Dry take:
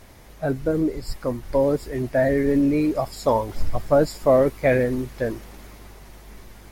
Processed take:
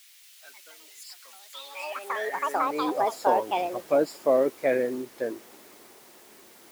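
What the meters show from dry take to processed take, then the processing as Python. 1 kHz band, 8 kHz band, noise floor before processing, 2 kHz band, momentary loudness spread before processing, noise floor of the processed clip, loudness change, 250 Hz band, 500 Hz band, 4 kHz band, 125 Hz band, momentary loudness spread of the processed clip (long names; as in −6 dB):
+1.5 dB, −2.0 dB, −46 dBFS, −3.5 dB, 11 LU, −53 dBFS, −4.5 dB, −12.0 dB, −6.0 dB, 0.0 dB, −24.0 dB, 20 LU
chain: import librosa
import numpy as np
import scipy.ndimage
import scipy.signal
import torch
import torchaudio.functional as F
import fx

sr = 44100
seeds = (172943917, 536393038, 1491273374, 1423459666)

y = fx.quant_dither(x, sr, seeds[0], bits=8, dither='triangular')
y = fx.filter_sweep_highpass(y, sr, from_hz=2700.0, to_hz=330.0, start_s=2.03, end_s=2.96, q=1.4)
y = fx.echo_pitch(y, sr, ms=233, semitones=6, count=2, db_per_echo=-3.0)
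y = y * 10.0 ** (-7.0 / 20.0)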